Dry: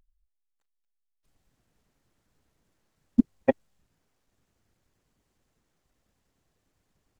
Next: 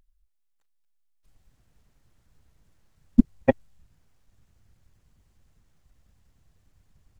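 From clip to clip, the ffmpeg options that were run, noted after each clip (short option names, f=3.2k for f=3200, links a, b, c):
-af "asubboost=boost=4.5:cutoff=150,volume=3.5dB"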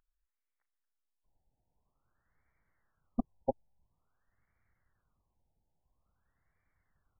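-af "aeval=exprs='(tanh(2.51*val(0)+0.45)-tanh(0.45))/2.51':c=same,tiltshelf=f=820:g=-10,afftfilt=real='re*lt(b*sr/1024,920*pow(2400/920,0.5+0.5*sin(2*PI*0.49*pts/sr)))':imag='im*lt(b*sr/1024,920*pow(2400/920,0.5+0.5*sin(2*PI*0.49*pts/sr)))':win_size=1024:overlap=0.75,volume=-5.5dB"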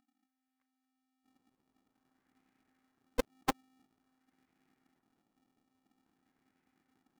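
-af "aeval=exprs='val(0)*sgn(sin(2*PI*260*n/s))':c=same"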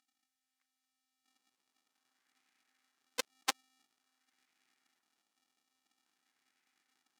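-af "bandpass=f=5.6k:t=q:w=0.66:csg=0,volume=8.5dB"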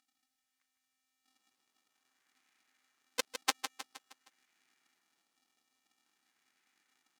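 -af "aecho=1:1:156|312|468|624|780:0.376|0.177|0.083|0.039|0.0183,volume=2dB"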